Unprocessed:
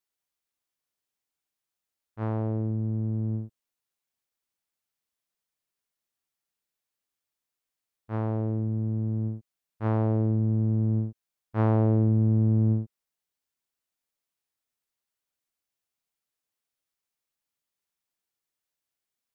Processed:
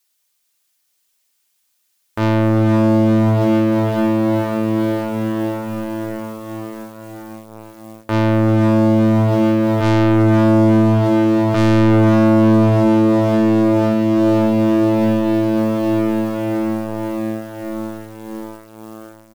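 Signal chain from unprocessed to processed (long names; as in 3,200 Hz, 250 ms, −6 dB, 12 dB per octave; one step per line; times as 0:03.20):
high-pass filter 120 Hz 6 dB per octave
comb filter 3.3 ms, depth 49%
slap from a distant wall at 59 metres, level −13 dB
in parallel at −10 dB: hard clipping −28.5 dBFS, distortion −7 dB
on the sum: high-shelf EQ 2,000 Hz +12 dB
on a send: feedback delay with all-pass diffusion 515 ms, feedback 76%, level −6 dB
on the sum: leveller curve on the samples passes 3
boost into a limiter +19 dB
level −7.5 dB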